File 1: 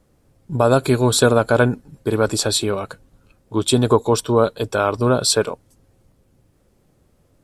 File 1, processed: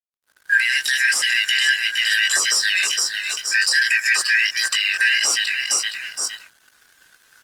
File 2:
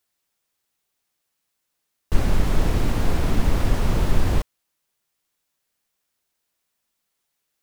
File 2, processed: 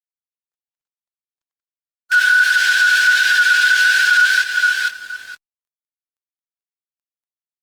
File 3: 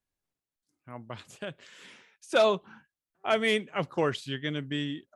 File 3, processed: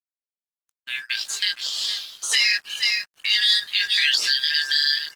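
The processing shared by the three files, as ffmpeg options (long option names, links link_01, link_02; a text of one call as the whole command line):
ffmpeg -i in.wav -filter_complex "[0:a]afftfilt=real='real(if(lt(b,272),68*(eq(floor(b/68),0)*3+eq(floor(b/68),1)*0+eq(floor(b/68),2)*1+eq(floor(b/68),3)*2)+mod(b,68),b),0)':imag='imag(if(lt(b,272),68*(eq(floor(b/68),0)*3+eq(floor(b/68),1)*0+eq(floor(b/68),2)*1+eq(floor(b/68),3)*2)+mod(b,68),b),0)':win_size=2048:overlap=0.75,highpass=frequency=330:width=0.5412,highpass=frequency=330:width=1.3066,aecho=1:1:465|930:0.168|0.0369,acrossover=split=970[link_01][link_02];[link_02]aexciter=amount=8.2:drive=8.5:freq=3000[link_03];[link_01][link_03]amix=inputs=2:normalize=0,acompressor=threshold=-19dB:ratio=2.5,aemphasis=mode=reproduction:type=75fm,flanger=delay=18.5:depth=2.7:speed=1.5,dynaudnorm=framelen=220:gausssize=3:maxgain=9dB,alimiter=limit=-15dB:level=0:latency=1:release=43,aeval=exprs='sgn(val(0))*max(abs(val(0))-0.00355,0)':channel_layout=same,equalizer=frequency=1300:width_type=o:width=0.78:gain=6.5,volume=5.5dB" -ar 48000 -c:a libopus -b:a 24k out.opus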